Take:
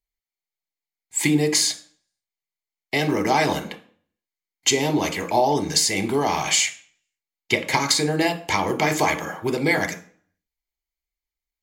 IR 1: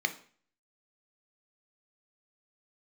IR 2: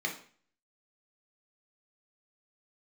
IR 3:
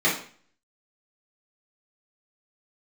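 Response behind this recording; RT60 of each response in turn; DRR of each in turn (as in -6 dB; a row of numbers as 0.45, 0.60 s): 1; 0.45, 0.45, 0.45 s; 7.5, 0.0, -8.5 dB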